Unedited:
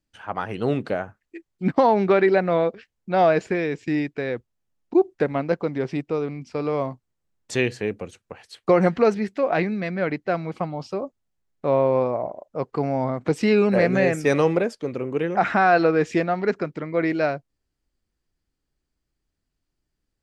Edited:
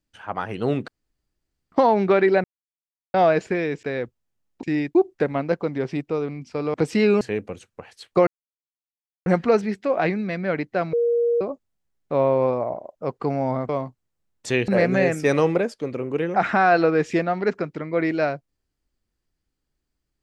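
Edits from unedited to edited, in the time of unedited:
0.88–1.72 s: room tone
2.44–3.14 s: mute
3.83–4.15 s: move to 4.95 s
6.74–7.73 s: swap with 13.22–13.69 s
8.79 s: insert silence 0.99 s
10.46–10.94 s: bleep 472 Hz -17 dBFS

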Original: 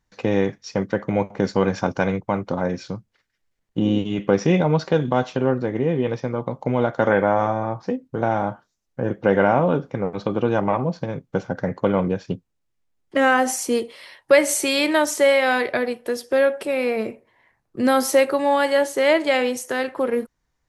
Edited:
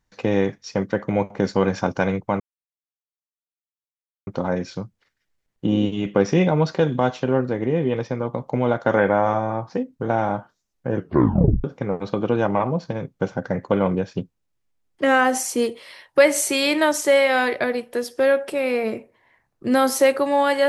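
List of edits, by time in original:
2.40 s: insert silence 1.87 s
9.09 s: tape stop 0.68 s

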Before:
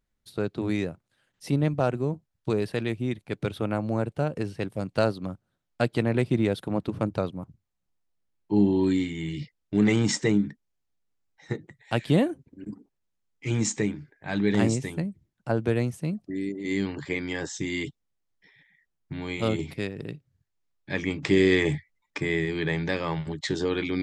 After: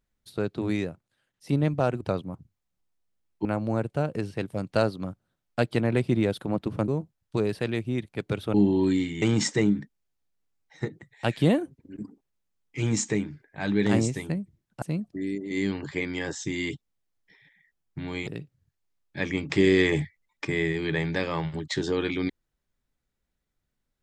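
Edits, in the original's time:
0.71–1.49 s: fade out, to -9 dB
2.01–3.67 s: swap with 7.10–8.54 s
9.22–9.90 s: delete
15.50–15.96 s: delete
19.41–20.00 s: delete

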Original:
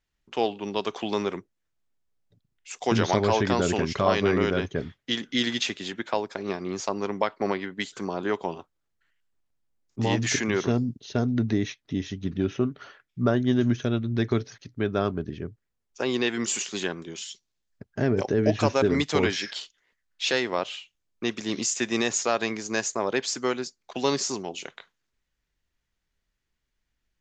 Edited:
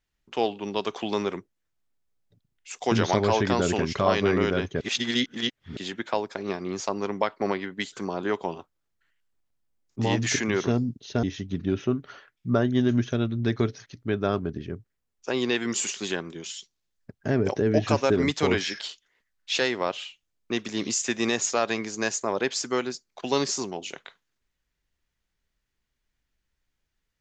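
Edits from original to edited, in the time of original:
4.81–5.77 s: reverse
11.23–11.95 s: delete

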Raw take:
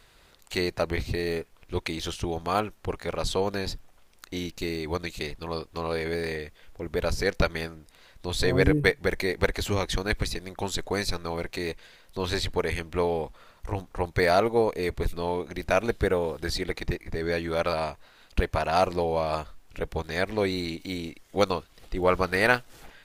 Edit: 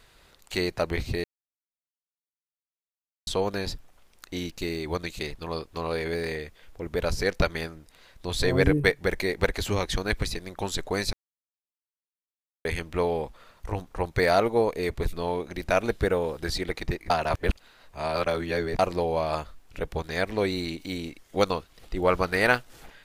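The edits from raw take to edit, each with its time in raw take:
1.24–3.27 s: mute
11.13–12.65 s: mute
17.10–18.79 s: reverse

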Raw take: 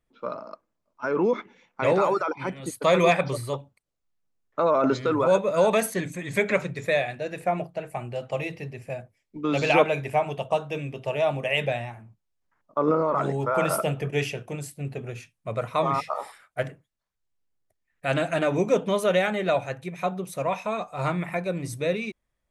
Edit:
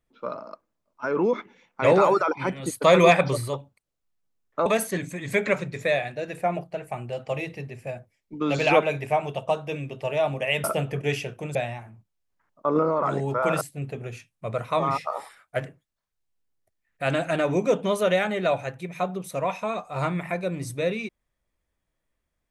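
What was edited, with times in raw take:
1.84–3.48 s: gain +3.5 dB
4.66–5.69 s: delete
13.73–14.64 s: move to 11.67 s

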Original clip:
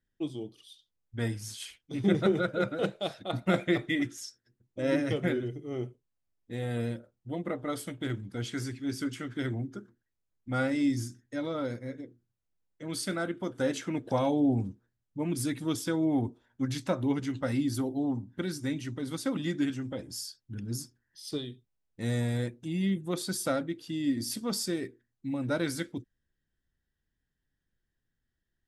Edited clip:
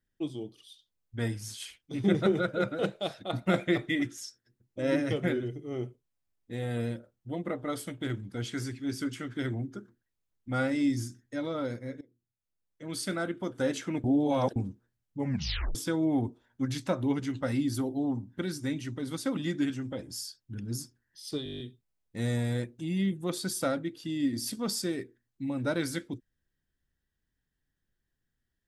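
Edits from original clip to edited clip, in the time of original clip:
12.01–13.09 s: fade in, from -18 dB
14.04–14.56 s: reverse
15.18 s: tape stop 0.57 s
21.44 s: stutter 0.02 s, 9 plays

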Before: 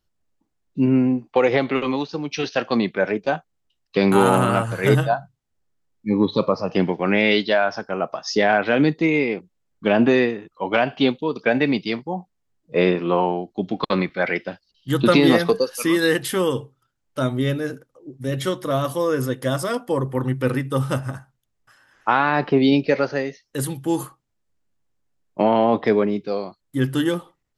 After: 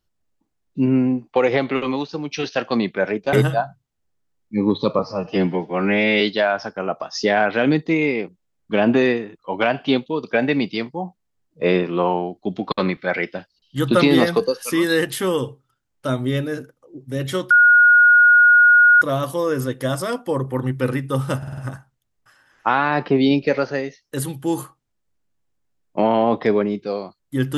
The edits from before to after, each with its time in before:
3.33–4.86 s: delete
6.52–7.33 s: stretch 1.5×
18.63 s: add tone 1.44 kHz -8 dBFS 1.51 s
20.99 s: stutter 0.05 s, 5 plays

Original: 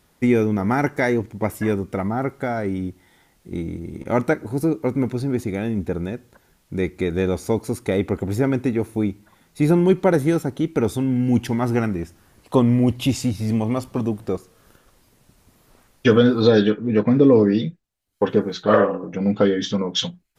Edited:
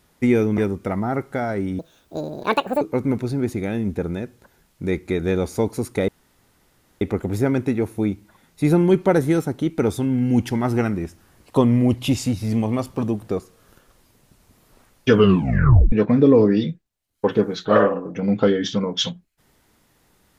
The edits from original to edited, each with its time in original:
0.58–1.66 s: delete
2.87–4.72 s: speed 181%
7.99 s: insert room tone 0.93 s
16.11 s: tape stop 0.79 s

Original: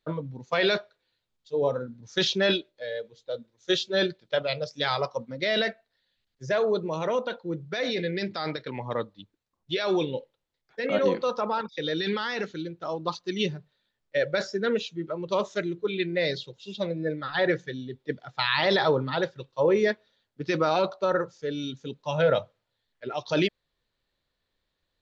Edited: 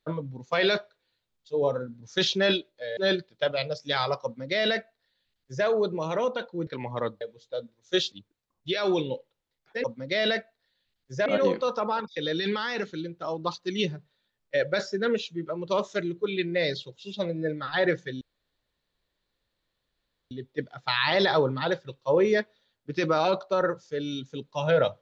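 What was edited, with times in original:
2.97–3.88 s: move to 9.15 s
5.15–6.57 s: copy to 10.87 s
7.58–8.61 s: delete
17.82 s: insert room tone 2.10 s

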